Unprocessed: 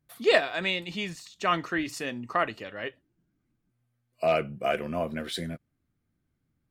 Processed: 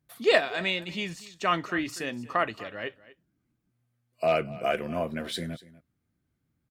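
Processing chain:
high-pass filter 42 Hz
single-tap delay 242 ms −19 dB

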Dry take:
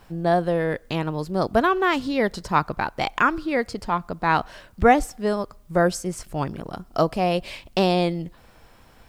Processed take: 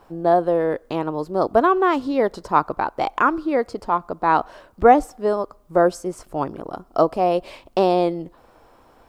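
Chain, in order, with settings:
flat-topped bell 590 Hz +10 dB 2.6 octaves
level −6 dB

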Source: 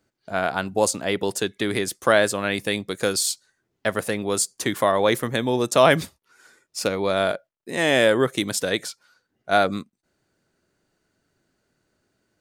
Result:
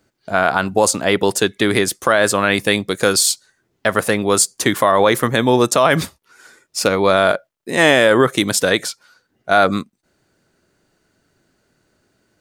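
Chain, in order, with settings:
dynamic equaliser 1,200 Hz, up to +5 dB, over −34 dBFS, Q 1.4
boost into a limiter +9 dB
level −1 dB

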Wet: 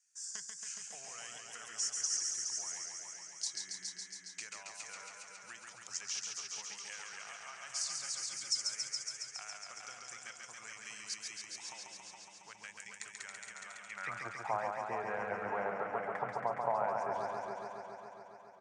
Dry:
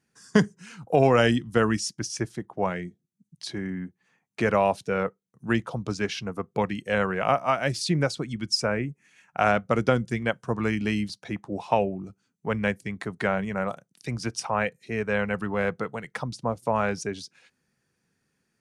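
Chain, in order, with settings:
graphic EQ with 10 bands 250 Hz −9 dB, 500 Hz −8 dB, 4,000 Hz −8 dB, 8,000 Hz +12 dB
downward compressor 6 to 1, threshold −36 dBFS, peak gain reduction 16.5 dB
high-frequency loss of the air 62 metres
single-tap delay 420 ms −7 dB
band-pass filter sweep 6,300 Hz → 710 Hz, 0:13.62–0:14.30
feedback echo with a swinging delay time 138 ms, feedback 79%, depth 63 cents, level −4 dB
level +9.5 dB

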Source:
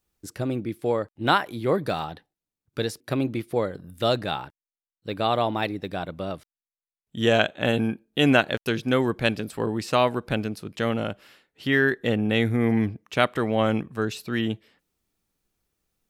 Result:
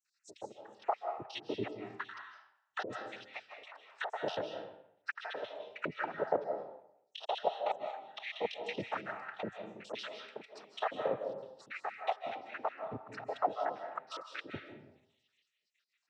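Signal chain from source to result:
time-frequency cells dropped at random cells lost 83%
compressor whose output falls as the input rises −35 dBFS, ratio −0.5
envelope filter 610–3,000 Hz, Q 3.1, down, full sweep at −39.5 dBFS
cochlear-implant simulation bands 12
on a send at −5 dB: convolution reverb RT60 0.75 s, pre-delay 120 ms
on the sum: dynamic equaliser 880 Hz, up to −4 dB, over −55 dBFS, Q 1.6
level +12 dB

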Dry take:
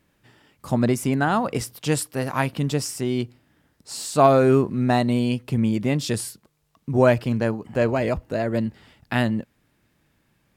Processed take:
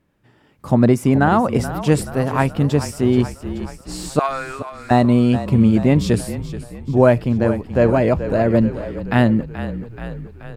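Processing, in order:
0:04.19–0:04.91: Chebyshev band-pass filter 1,500–9,300 Hz, order 2
echo with shifted repeats 429 ms, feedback 57%, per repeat −35 Hz, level −12.5 dB
automatic gain control gain up to 9 dB
high-shelf EQ 2,000 Hz −10.5 dB
level +1 dB

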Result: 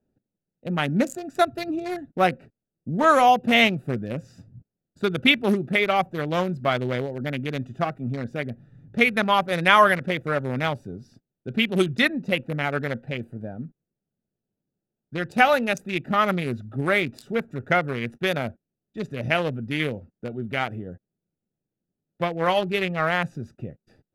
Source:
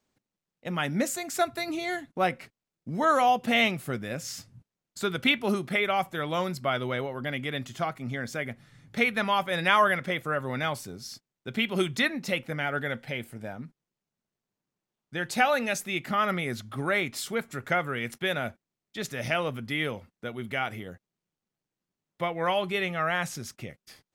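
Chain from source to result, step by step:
adaptive Wiener filter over 41 samples
level +6.5 dB

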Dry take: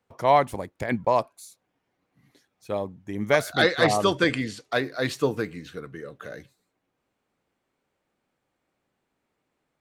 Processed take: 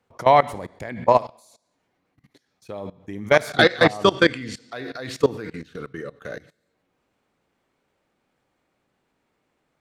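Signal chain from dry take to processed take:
on a send at −16 dB: high-shelf EQ 2,000 Hz +10 dB + convolution reverb RT60 0.65 s, pre-delay 25 ms
on the sum: output level in coarse steps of 20 dB
high-shelf EQ 10,000 Hz −7 dB
level +7.5 dB

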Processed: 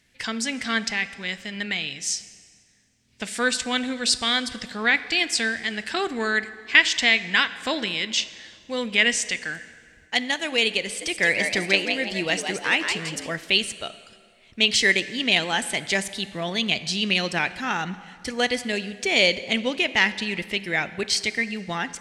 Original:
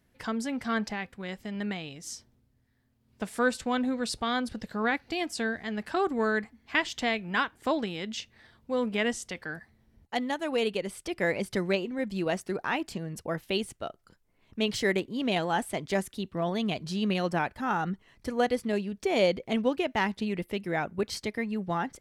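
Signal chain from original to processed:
flat-topped bell 4,000 Hz +14 dB 2.7 octaves
0:10.84–0:13.31: echo with shifted repeats 168 ms, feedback 37%, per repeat +110 Hz, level −6 dB
dense smooth reverb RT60 2.1 s, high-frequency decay 0.75×, DRR 13.5 dB

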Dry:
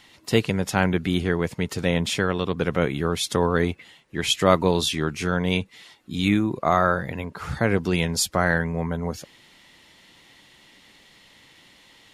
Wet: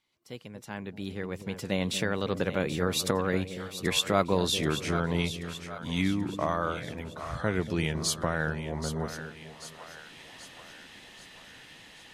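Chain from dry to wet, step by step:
source passing by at 0:04.59, 26 m/s, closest 11 metres
camcorder AGC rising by 8.7 dB per second
echo with a time of its own for lows and highs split 570 Hz, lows 235 ms, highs 782 ms, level −10.5 dB
level −4.5 dB

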